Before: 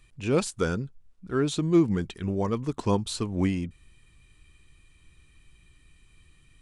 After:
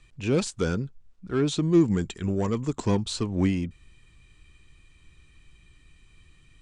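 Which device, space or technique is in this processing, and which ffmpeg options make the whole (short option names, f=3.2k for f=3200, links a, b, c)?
one-band saturation: -filter_complex "[0:a]lowpass=f=8.3k:w=0.5412,lowpass=f=8.3k:w=1.3066,acrossover=split=420|3000[a][b][c];[b]asoftclip=type=tanh:threshold=-30dB[d];[a][d][c]amix=inputs=3:normalize=0,asettb=1/sr,asplit=3[e][f][g];[e]atrim=end=1.804[h];[f]atrim=start=1.8:end=2.86,asetpts=PTS-STARTPTS,afade=t=in:d=0.004:c=qsin,afade=t=out:st=1.056:d=0.004:c=qsin,equalizer=f=7.3k:w=6.1:g=14[i];[g]atrim=start=2.856[j];[h][i]acrossfade=d=0.004:c1=hsin:c2=qsin[k];[k][j]acrossfade=d=0.004:c1=qsin:c2=hsin,volume=2dB"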